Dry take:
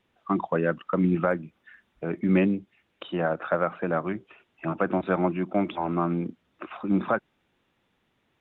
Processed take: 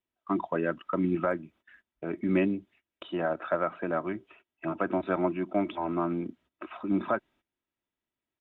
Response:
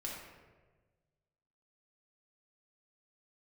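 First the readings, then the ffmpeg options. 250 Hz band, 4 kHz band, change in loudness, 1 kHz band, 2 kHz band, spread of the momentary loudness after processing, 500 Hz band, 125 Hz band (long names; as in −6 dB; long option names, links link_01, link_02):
−3.5 dB, can't be measured, −3.5 dB, −3.5 dB, −4.0 dB, 11 LU, −3.0 dB, −7.5 dB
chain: -af "agate=range=-17dB:threshold=-54dB:ratio=16:detection=peak,aecho=1:1:3.1:0.4,volume=-4dB"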